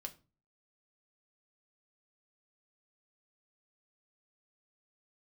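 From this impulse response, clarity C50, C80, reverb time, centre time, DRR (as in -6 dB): 17.5 dB, 23.0 dB, 0.35 s, 6 ms, 4.0 dB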